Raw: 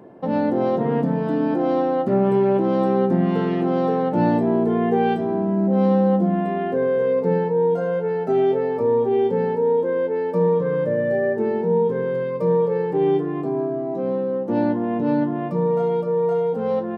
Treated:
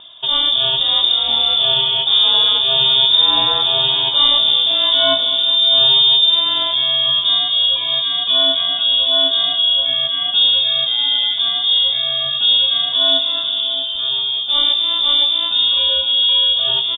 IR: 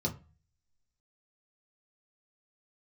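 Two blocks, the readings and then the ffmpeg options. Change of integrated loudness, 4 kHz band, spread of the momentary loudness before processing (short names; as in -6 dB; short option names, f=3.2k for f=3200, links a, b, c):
+8.5 dB, n/a, 4 LU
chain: -filter_complex "[0:a]lowshelf=f=300:g=10.5,asplit=2[a][b];[b]aecho=0:1:208|416|624|832|1040|1248:0.188|0.111|0.0656|0.0387|0.0228|0.0135[c];[a][c]amix=inputs=2:normalize=0,aexciter=amount=13.7:drive=9.4:freq=2.9k,highshelf=f=2.1k:g=8.5,asplit=2[d][e];[e]aecho=0:1:654:0.211[f];[d][f]amix=inputs=2:normalize=0,lowpass=f=3.2k:t=q:w=0.5098,lowpass=f=3.2k:t=q:w=0.6013,lowpass=f=3.2k:t=q:w=0.9,lowpass=f=3.2k:t=q:w=2.563,afreqshift=-3800,volume=-1dB"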